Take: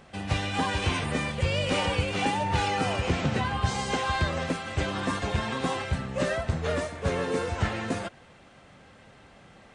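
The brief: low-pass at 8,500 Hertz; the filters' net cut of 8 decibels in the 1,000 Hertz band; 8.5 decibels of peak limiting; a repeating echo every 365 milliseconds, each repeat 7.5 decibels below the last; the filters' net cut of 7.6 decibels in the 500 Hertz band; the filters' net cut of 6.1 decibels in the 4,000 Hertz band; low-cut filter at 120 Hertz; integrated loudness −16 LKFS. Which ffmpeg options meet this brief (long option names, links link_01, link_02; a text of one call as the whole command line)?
ffmpeg -i in.wav -af "highpass=120,lowpass=8500,equalizer=frequency=500:width_type=o:gain=-7,equalizer=frequency=1000:width_type=o:gain=-7.5,equalizer=frequency=4000:width_type=o:gain=-8,alimiter=level_in=2dB:limit=-24dB:level=0:latency=1,volume=-2dB,aecho=1:1:365|730|1095|1460|1825:0.422|0.177|0.0744|0.0312|0.0131,volume=19dB" out.wav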